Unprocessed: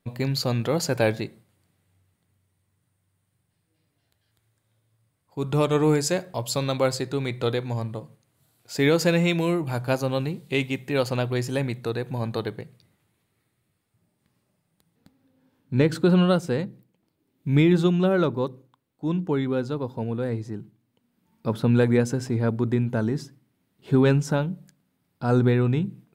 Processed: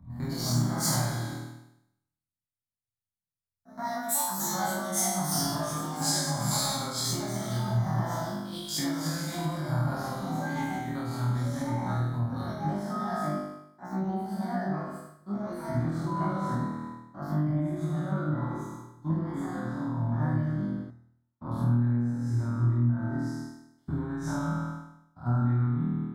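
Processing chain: spectrogram pixelated in time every 100 ms; peak limiter -18.5 dBFS, peak gain reduction 8.5 dB; 16.06–16.54 s: whistle 1 kHz -30 dBFS; flutter echo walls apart 4.3 m, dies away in 1.4 s; reverberation RT60 0.95 s, pre-delay 33 ms, DRR 6.5 dB; ever faster or slower copies 148 ms, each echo +4 st, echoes 2; compression 8:1, threshold -22 dBFS, peak gain reduction 14.5 dB; static phaser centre 1.1 kHz, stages 4; three bands expanded up and down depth 100%

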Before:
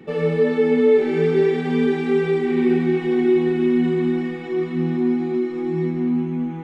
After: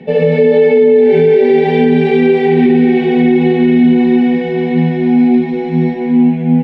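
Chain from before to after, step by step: low-pass 2.8 kHz 12 dB/octave; bass shelf 100 Hz -8 dB; static phaser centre 330 Hz, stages 6; multi-tap echo 75/144/400/439 ms -3.5/-4/-10.5/-17.5 dB; loudness maximiser +15.5 dB; trim -1 dB

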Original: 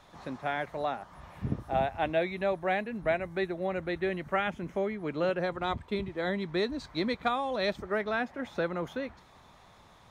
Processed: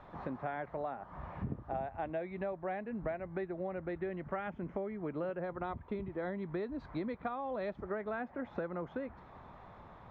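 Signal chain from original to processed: low-pass 1.5 kHz 12 dB/octave; compression 5:1, threshold -41 dBFS, peak gain reduction 15.5 dB; trim +4.5 dB

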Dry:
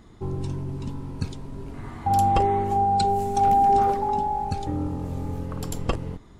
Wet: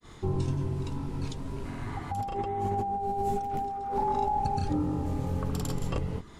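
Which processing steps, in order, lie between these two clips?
granulator 153 ms, grains 20 per s, pitch spread up and down by 0 st; compressor with a negative ratio -29 dBFS, ratio -1; tape noise reduction on one side only encoder only

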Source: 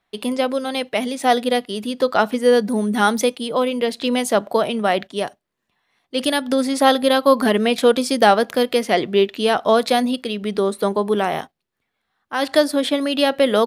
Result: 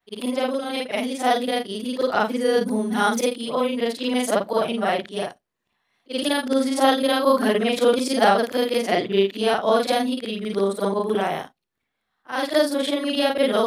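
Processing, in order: short-time spectra conjugated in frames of 112 ms

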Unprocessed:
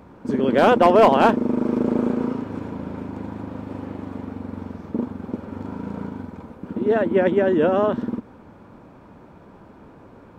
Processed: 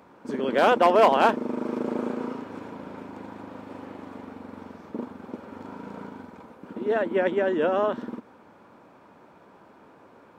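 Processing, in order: high-pass 540 Hz 6 dB/octave; trim -1.5 dB

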